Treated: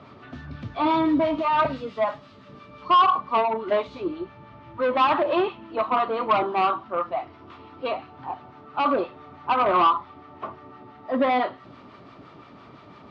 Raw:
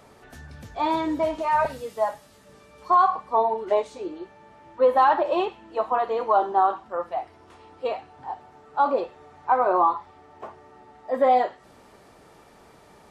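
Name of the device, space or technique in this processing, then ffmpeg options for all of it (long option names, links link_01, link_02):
guitar amplifier with harmonic tremolo: -filter_complex "[0:a]acrossover=split=860[link_01][link_02];[link_01]aeval=exprs='val(0)*(1-0.5/2+0.5/2*cos(2*PI*5.9*n/s))':channel_layout=same[link_03];[link_02]aeval=exprs='val(0)*(1-0.5/2-0.5/2*cos(2*PI*5.9*n/s))':channel_layout=same[link_04];[link_03][link_04]amix=inputs=2:normalize=0,asoftclip=type=tanh:threshold=-22dB,highpass=84,equalizer=frequency=120:width_type=q:width=4:gain=7,equalizer=frequency=270:width_type=q:width=4:gain=6,equalizer=frequency=470:width_type=q:width=4:gain=-7,equalizer=frequency=820:width_type=q:width=4:gain=-7,equalizer=frequency=1200:width_type=q:width=4:gain=6,equalizer=frequency=1700:width_type=q:width=4:gain=-6,lowpass=frequency=4000:width=0.5412,lowpass=frequency=4000:width=1.3066,asplit=3[link_05][link_06][link_07];[link_05]afade=type=out:start_time=3.86:duration=0.02[link_08];[link_06]asubboost=boost=3:cutoff=140,afade=type=in:start_time=3.86:duration=0.02,afade=type=out:start_time=4.82:duration=0.02[link_09];[link_07]afade=type=in:start_time=4.82:duration=0.02[link_10];[link_08][link_09][link_10]amix=inputs=3:normalize=0,volume=8dB"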